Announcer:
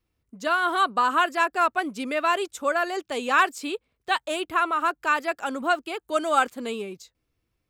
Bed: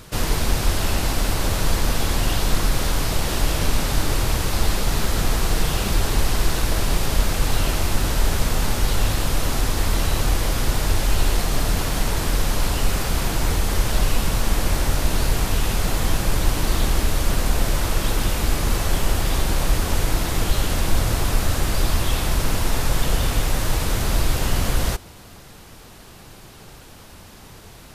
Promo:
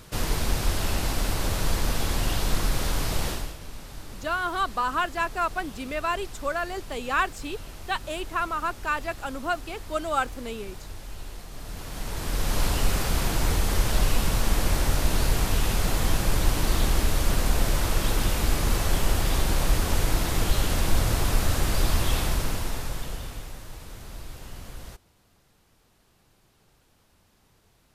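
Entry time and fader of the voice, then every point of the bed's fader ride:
3.80 s, −4.5 dB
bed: 0:03.28 −5 dB
0:03.58 −20 dB
0:11.50 −20 dB
0:12.59 −3 dB
0:22.19 −3 dB
0:23.66 −20 dB

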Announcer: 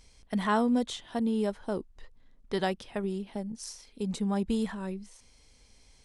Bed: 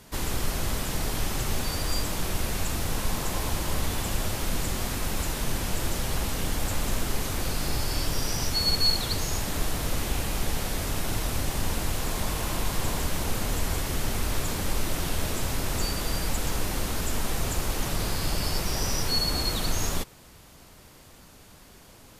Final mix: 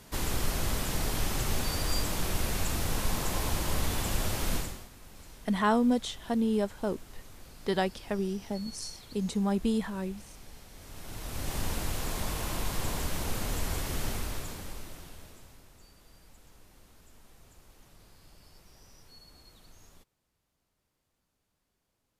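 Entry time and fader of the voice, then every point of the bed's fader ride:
5.15 s, +1.0 dB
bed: 0:04.56 −2 dB
0:04.90 −22 dB
0:10.72 −22 dB
0:11.54 −4.5 dB
0:14.08 −4.5 dB
0:15.76 −29 dB

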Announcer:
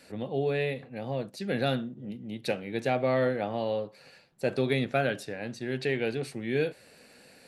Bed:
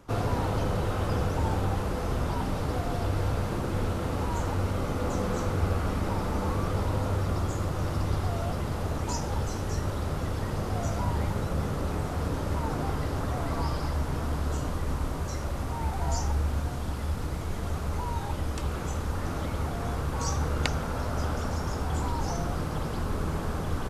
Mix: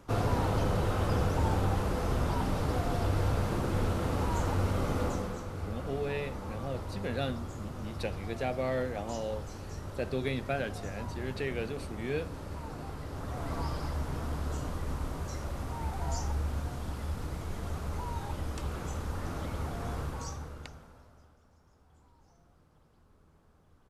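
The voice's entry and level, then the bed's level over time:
5.55 s, −6.0 dB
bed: 0:05.02 −1 dB
0:05.43 −11 dB
0:13.00 −11 dB
0:13.52 −5 dB
0:20.03 −5 dB
0:21.38 −33.5 dB

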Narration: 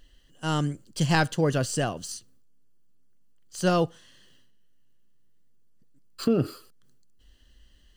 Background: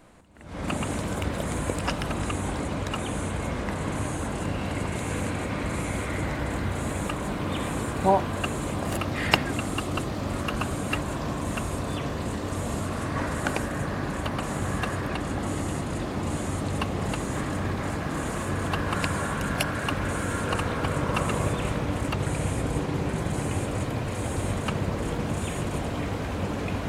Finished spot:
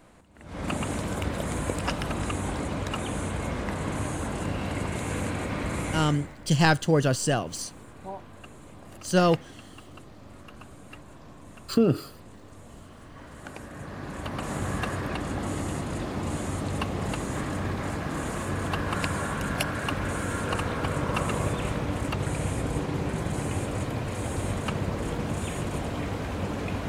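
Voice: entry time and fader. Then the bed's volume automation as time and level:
5.50 s, +2.0 dB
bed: 0:05.95 −1 dB
0:06.38 −18 dB
0:13.17 −18 dB
0:14.53 −1.5 dB

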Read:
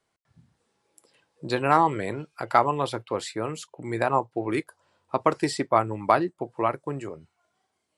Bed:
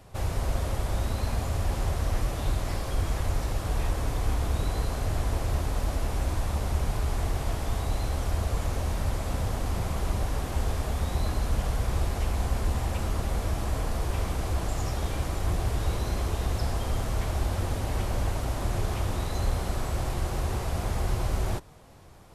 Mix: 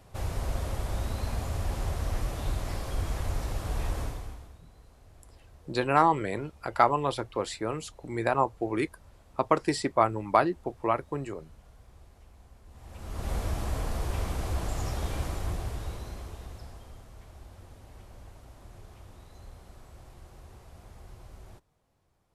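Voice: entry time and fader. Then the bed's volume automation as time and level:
4.25 s, −2.0 dB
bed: 0:04.02 −3.5 dB
0:04.61 −27 dB
0:12.65 −27 dB
0:13.30 −2.5 dB
0:15.25 −2.5 dB
0:17.08 −21 dB

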